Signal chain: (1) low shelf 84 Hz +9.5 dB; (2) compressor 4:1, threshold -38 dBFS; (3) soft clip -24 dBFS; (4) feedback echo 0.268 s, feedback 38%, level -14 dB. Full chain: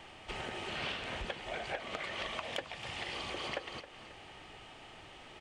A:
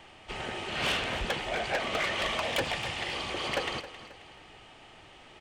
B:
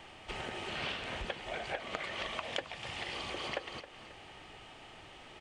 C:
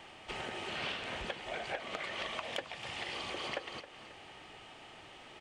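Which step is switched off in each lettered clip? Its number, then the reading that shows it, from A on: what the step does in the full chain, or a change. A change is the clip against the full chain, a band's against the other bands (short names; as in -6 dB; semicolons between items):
2, mean gain reduction 10.0 dB; 3, distortion -21 dB; 1, 125 Hz band -3.0 dB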